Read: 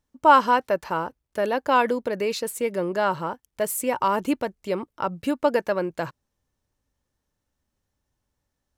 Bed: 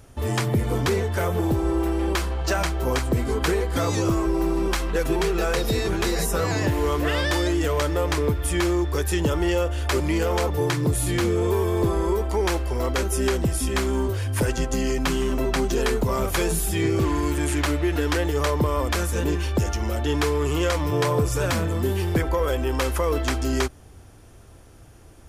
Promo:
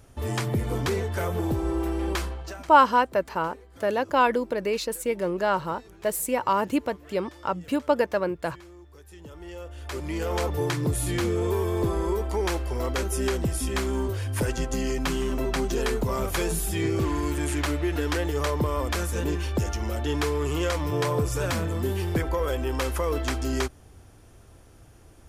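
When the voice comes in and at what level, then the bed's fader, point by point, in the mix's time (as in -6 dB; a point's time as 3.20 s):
2.45 s, -1.0 dB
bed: 2.25 s -4 dB
2.80 s -26 dB
9.03 s -26 dB
10.39 s -3.5 dB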